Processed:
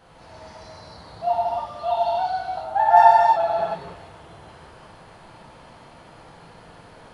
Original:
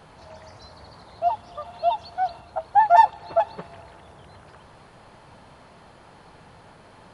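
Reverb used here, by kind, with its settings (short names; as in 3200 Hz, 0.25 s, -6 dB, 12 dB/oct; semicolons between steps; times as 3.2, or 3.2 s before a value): non-linear reverb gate 0.36 s flat, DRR -8 dB; gain -5.5 dB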